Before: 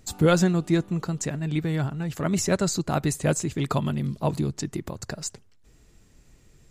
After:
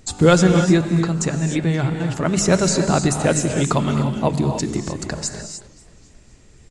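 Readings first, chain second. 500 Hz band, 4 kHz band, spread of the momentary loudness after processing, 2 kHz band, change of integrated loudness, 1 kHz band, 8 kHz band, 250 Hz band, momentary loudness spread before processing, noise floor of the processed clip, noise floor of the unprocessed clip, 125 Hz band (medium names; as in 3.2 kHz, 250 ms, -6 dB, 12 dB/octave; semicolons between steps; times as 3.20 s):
+7.5 dB, +7.5 dB, 12 LU, +7.5 dB, +7.0 dB, +7.5 dB, +7.5 dB, +7.0 dB, 12 LU, -49 dBFS, -57 dBFS, +6.5 dB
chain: hum notches 50/100/150/200 Hz; gated-style reverb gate 330 ms rising, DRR 5.5 dB; resampled via 22.05 kHz; modulated delay 263 ms, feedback 52%, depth 174 cents, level -21 dB; trim +6.5 dB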